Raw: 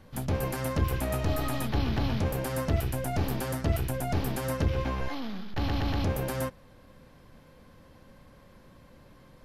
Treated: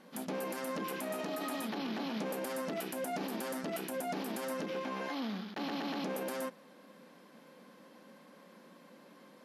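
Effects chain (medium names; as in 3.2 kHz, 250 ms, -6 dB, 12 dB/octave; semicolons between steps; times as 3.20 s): brick-wall FIR band-pass 170–13000 Hz; peak limiter -29.5 dBFS, peak gain reduction 9.5 dB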